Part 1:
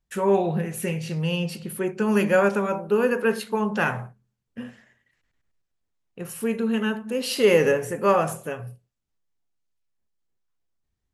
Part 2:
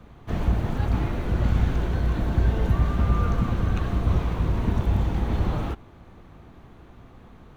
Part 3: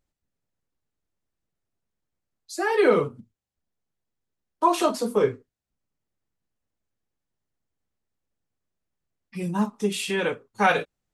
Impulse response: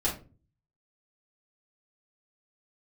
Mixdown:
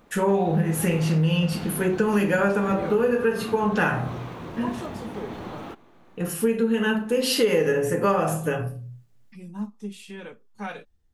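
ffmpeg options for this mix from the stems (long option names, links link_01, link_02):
-filter_complex "[0:a]volume=0.5dB,asplit=2[link_01][link_02];[link_02]volume=-5.5dB[link_03];[1:a]highpass=230,volume=-3.5dB[link_04];[2:a]acompressor=mode=upward:threshold=-32dB:ratio=2.5,equalizer=frequency=210:width_type=o:width=0.39:gain=9.5,volume=-15.5dB,asplit=2[link_05][link_06];[link_06]apad=whole_len=490911[link_07];[link_01][link_07]sidechaincompress=threshold=-43dB:ratio=8:attack=16:release=1060[link_08];[3:a]atrim=start_sample=2205[link_09];[link_03][link_09]afir=irnorm=-1:irlink=0[link_10];[link_08][link_04][link_05][link_10]amix=inputs=4:normalize=0,acompressor=threshold=-18dB:ratio=6"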